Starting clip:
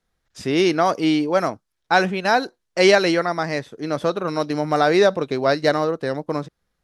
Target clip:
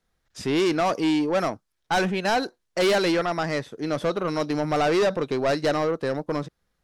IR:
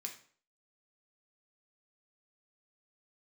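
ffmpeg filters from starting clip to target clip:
-af "asoftclip=type=tanh:threshold=-17.5dB"

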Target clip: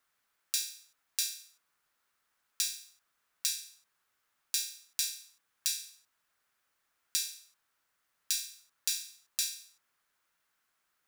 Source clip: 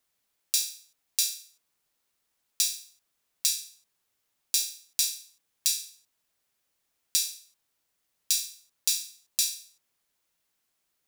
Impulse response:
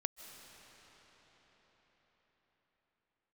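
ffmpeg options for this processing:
-filter_complex "[0:a]equalizer=f=1.4k:t=o:w=1.3:g=12,asplit=2[a][b];[b]acompressor=threshold=-32dB:ratio=6,volume=-1dB[c];[a][c]amix=inputs=2:normalize=0,volume=-9dB"

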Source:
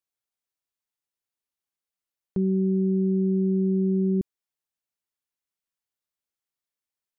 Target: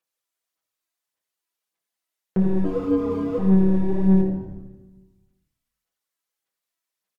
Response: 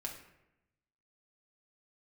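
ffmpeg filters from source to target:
-filter_complex "[0:a]highpass=f=410:p=1,asettb=1/sr,asplit=3[a][b][c];[a]atrim=end=2.644[d];[b]atrim=start=2.64:end=3.38,asetpts=PTS-STARTPTS,afade=t=in:d=0.004:c=qsin,afade=t=out:st=0.736:d=0.004:c=qsin,afreqshift=93[e];[c]atrim=start=3.376[f];[d][e]acrossfade=d=0.004:c1=hsin:c2=qsin[g];[g][f]acrossfade=d=0.004:c1=qsin:c2=hsin,asoftclip=type=hard:threshold=-28.5dB,aphaser=in_gain=1:out_gain=1:delay=3.1:decay=0.69:speed=1.7:type=sinusoidal,asplit=8[h][i][j][k][l][m][n][o];[i]adelay=80,afreqshift=-35,volume=-14dB[p];[j]adelay=160,afreqshift=-70,volume=-17.7dB[q];[k]adelay=240,afreqshift=-105,volume=-21.5dB[r];[l]adelay=320,afreqshift=-140,volume=-25.2dB[s];[m]adelay=400,afreqshift=-175,volume=-29dB[t];[n]adelay=480,afreqshift=-210,volume=-32.7dB[u];[o]adelay=560,afreqshift=-245,volume=-36.5dB[v];[h][p][q][r][s][t][u][v]amix=inputs=8:normalize=0[w];[1:a]atrim=start_sample=2205,asetrate=33957,aresample=44100[x];[w][x]afir=irnorm=-1:irlink=0,volume=3.5dB"

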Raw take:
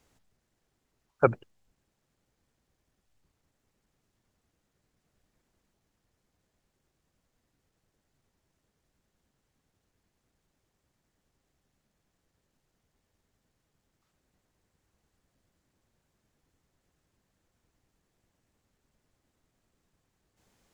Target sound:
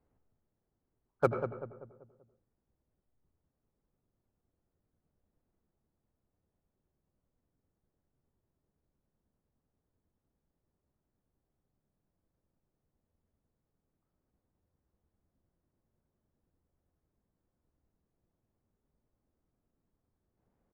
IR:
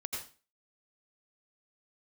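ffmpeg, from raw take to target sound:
-filter_complex "[0:a]adynamicsmooth=sensitivity=8:basefreq=1.3k,asplit=2[a][b];[b]adelay=193,lowpass=f=1.3k:p=1,volume=-8dB,asplit=2[c][d];[d]adelay=193,lowpass=f=1.3k:p=1,volume=0.45,asplit=2[e][f];[f]adelay=193,lowpass=f=1.3k:p=1,volume=0.45,asplit=2[g][h];[h]adelay=193,lowpass=f=1.3k:p=1,volume=0.45,asplit=2[i][j];[j]adelay=193,lowpass=f=1.3k:p=1,volume=0.45[k];[a][c][e][g][i][k]amix=inputs=6:normalize=0,asplit=2[l][m];[1:a]atrim=start_sample=2205,lowpass=2.1k[n];[m][n]afir=irnorm=-1:irlink=0,volume=-5dB[o];[l][o]amix=inputs=2:normalize=0,volume=-8.5dB"

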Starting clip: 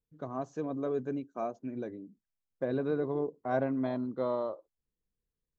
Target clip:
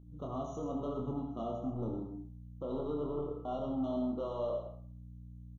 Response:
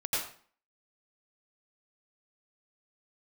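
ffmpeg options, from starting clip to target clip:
-filter_complex "[0:a]asettb=1/sr,asplit=3[a][b][c];[a]atrim=end=0.974[d];[b]atrim=start=0.97:end=2,asetpts=PTS-STARTPTS,afade=t=in:d=0.004:c=qsin,afade=t=out:st=1.026:d=0.004:c=qsin,bass=f=250:g=12,treble=f=4k:g=-6[e];[c]atrim=start=1.996[f];[d][e]acrossfade=d=0.004:c1=hsin:c2=qsin[g];[g][f]acrossfade=d=0.004:c1=qsin:c2=hsin,asplit=2[h][i];[i]acompressor=threshold=-43dB:ratio=6,volume=-3dB[j];[h][j]amix=inputs=2:normalize=0,alimiter=limit=-24dB:level=0:latency=1:release=148,asoftclip=type=tanh:threshold=-33dB,aeval=exprs='val(0)+0.00282*(sin(2*PI*60*n/s)+sin(2*PI*2*60*n/s)/2+sin(2*PI*3*60*n/s)/3+sin(2*PI*4*60*n/s)/4+sin(2*PI*5*60*n/s)/5)':c=same,aecho=1:1:27|67:0.631|0.355,asplit=2[k][l];[1:a]atrim=start_sample=2205[m];[l][m]afir=irnorm=-1:irlink=0,volume=-9dB[n];[k][n]amix=inputs=2:normalize=0,afftfilt=real='re*eq(mod(floor(b*sr/1024/1400),2),0)':imag='im*eq(mod(floor(b*sr/1024/1400),2),0)':win_size=1024:overlap=0.75,volume=-4dB"

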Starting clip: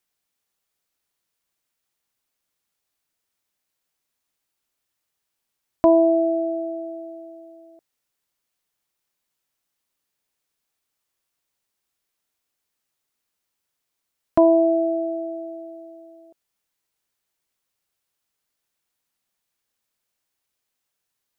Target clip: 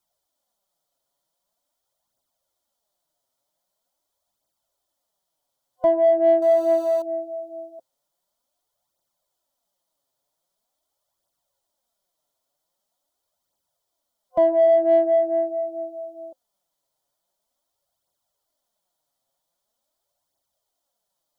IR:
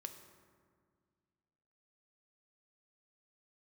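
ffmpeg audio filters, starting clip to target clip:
-filter_complex "[0:a]asettb=1/sr,asplit=3[a][b][c];[a]atrim=end=6.424[d];[b]atrim=start=6.42:end=7.02,asetpts=PTS-STARTPTS,afade=t=in:d=0.004:c=qsin,afade=t=out:st=0.596:d=0.004:c=qsin,aeval=exprs='val(0)+0.5*0.0158*sgn(val(0))':c=same[e];[c]atrim=start=7.016[f];[d][e]acrossfade=d=0.004:c1=hsin:c2=qsin[g];[g][f]acrossfade=d=0.004:c1=qsin:c2=hsin,superequalizer=8b=3.55:9b=2:11b=0.447:12b=0.316,alimiter=limit=-12dB:level=0:latency=1:release=286,flanger=delay=0.1:depth=7.8:regen=1:speed=0.44:shape=triangular,asplit=2[h][i];[i]asoftclip=type=tanh:threshold=-21dB,volume=-10dB[j];[h][j]amix=inputs=2:normalize=0,volume=1dB"

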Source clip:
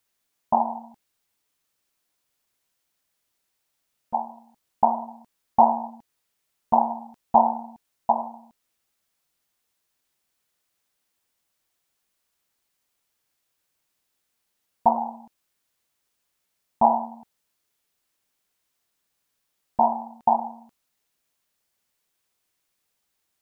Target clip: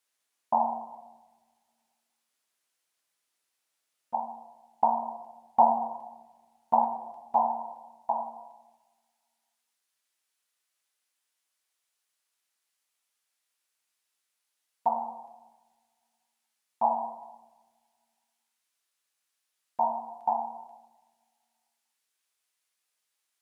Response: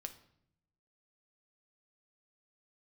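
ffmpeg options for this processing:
-filter_complex "[0:a]asetnsamples=n=441:p=0,asendcmd='6.84 highpass f 1200',highpass=f=530:p=1[a];[1:a]atrim=start_sample=2205,asetrate=22932,aresample=44100[b];[a][b]afir=irnorm=-1:irlink=0,volume=-2dB"

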